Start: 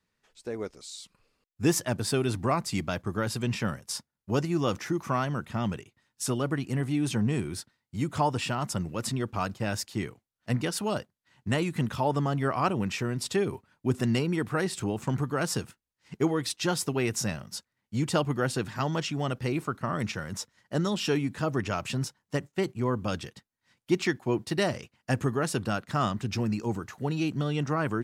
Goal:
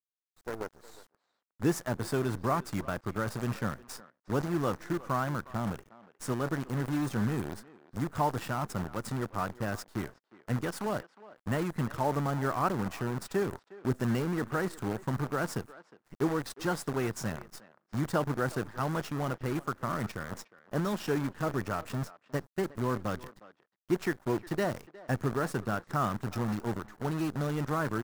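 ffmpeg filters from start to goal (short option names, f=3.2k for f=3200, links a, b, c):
-filter_complex "[0:a]acrusher=bits=6:dc=4:mix=0:aa=0.000001,highshelf=f=2k:t=q:w=1.5:g=-7,asplit=2[a][b];[b]adelay=360,highpass=300,lowpass=3.4k,asoftclip=type=hard:threshold=-19.5dB,volume=-18dB[c];[a][c]amix=inputs=2:normalize=0,volume=-3.5dB"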